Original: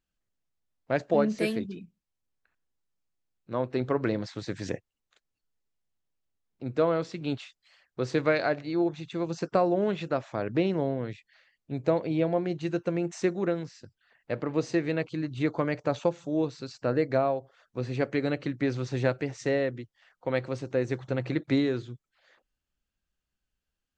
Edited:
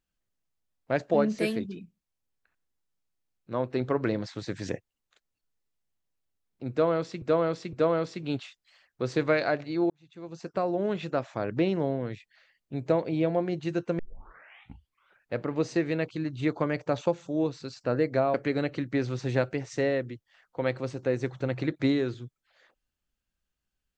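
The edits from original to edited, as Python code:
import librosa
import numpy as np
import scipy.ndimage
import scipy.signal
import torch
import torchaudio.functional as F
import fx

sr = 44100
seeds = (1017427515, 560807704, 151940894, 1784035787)

y = fx.edit(x, sr, fx.repeat(start_s=6.71, length_s=0.51, count=3),
    fx.fade_in_span(start_s=8.88, length_s=1.2),
    fx.tape_start(start_s=12.97, length_s=1.36),
    fx.cut(start_s=17.32, length_s=0.7), tone=tone)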